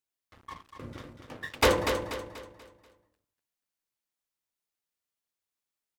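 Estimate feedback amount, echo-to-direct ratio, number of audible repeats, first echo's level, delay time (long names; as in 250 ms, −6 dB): 39%, −6.5 dB, 4, −7.0 dB, 242 ms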